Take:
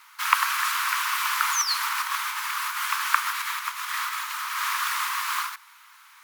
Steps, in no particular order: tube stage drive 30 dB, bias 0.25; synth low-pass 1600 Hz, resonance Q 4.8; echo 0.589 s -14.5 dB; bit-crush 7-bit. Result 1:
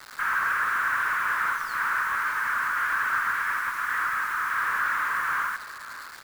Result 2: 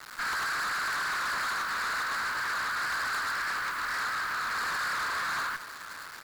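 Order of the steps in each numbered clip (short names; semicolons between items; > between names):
tube stage > synth low-pass > bit-crush > echo; synth low-pass > bit-crush > tube stage > echo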